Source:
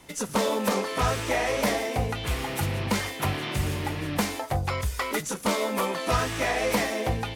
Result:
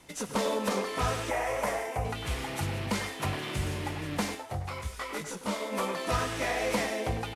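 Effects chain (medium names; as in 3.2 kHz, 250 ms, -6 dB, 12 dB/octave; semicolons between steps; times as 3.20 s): CVSD coder 64 kbps; 1.30–2.05 s: graphic EQ 250/1000/4000 Hz -11/+4/-11 dB; speakerphone echo 100 ms, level -8 dB; 4.34–5.71 s: detune thickener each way 19 cents -> 36 cents; trim -4.5 dB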